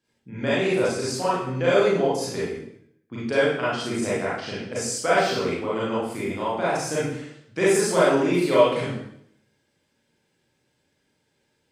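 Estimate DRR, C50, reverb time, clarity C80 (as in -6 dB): -9.5 dB, -2.0 dB, 0.70 s, 3.5 dB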